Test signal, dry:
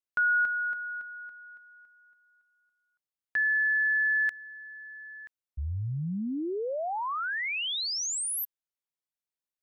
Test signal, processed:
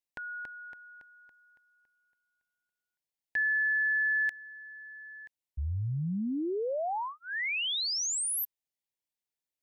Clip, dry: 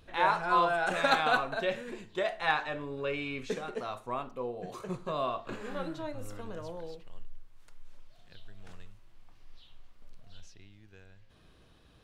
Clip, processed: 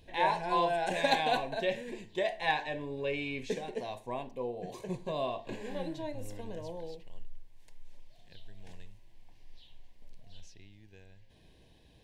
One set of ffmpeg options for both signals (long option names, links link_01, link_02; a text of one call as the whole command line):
ffmpeg -i in.wav -af "asuperstop=centerf=1300:order=4:qfactor=1.9" out.wav